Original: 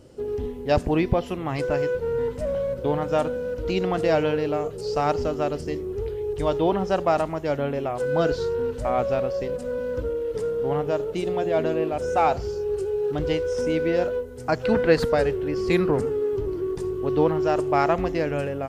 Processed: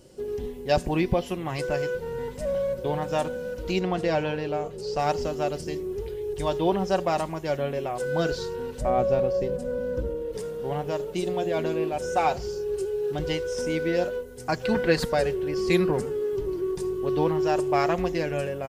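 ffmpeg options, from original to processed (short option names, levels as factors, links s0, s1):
-filter_complex "[0:a]asettb=1/sr,asplit=3[s0][s1][s2];[s0]atrim=end=3.794[s3];[s1]atrim=start=3.79:end=4.99,asetpts=PTS-STARTPTS,afade=t=in:d=0.004:c=qsin,afade=t=out:st=1.196:d=0.004:c=qsin,lowpass=f=3700:p=1[s4];[s2]atrim=start=4.986[s5];[s3][s4]acrossfade=d=0.004:c1=hsin:c2=qsin[s6];[s6][s5]acrossfade=d=0.004:c1=qsin:c2=hsin,asettb=1/sr,asplit=3[s7][s8][s9];[s7]atrim=end=8.814[s10];[s8]atrim=start=8.81:end=10.33,asetpts=PTS-STARTPTS,afade=t=in:d=0.004:c=qsin,afade=t=out:st=1.516:d=0.004:c=qsin,tiltshelf=f=840:g=6[s11];[s9]atrim=start=10.326[s12];[s10][s11]acrossfade=d=0.004:c1=hsin:c2=qsin[s13];[s13][s12]acrossfade=d=0.004:c1=qsin:c2=hsin,highshelf=f=3800:g=9,bandreject=f=1300:w=16,aecho=1:1:5.4:0.41,volume=0.668"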